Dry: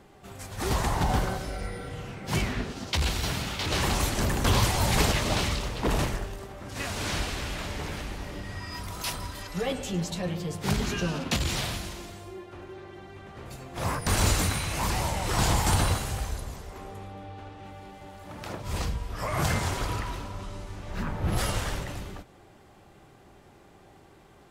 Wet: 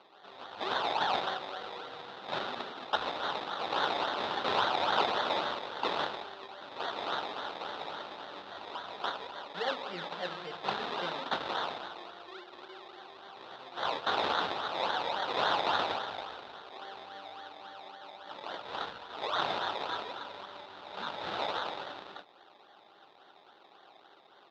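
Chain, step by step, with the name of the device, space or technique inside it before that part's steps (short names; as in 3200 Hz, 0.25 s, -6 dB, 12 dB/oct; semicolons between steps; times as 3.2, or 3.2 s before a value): circuit-bent sampling toy (decimation with a swept rate 24×, swing 60% 3.6 Hz; speaker cabinet 530–4200 Hz, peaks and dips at 840 Hz +4 dB, 1400 Hz +5 dB, 2200 Hz -5 dB, 3700 Hz +10 dB); gain -1.5 dB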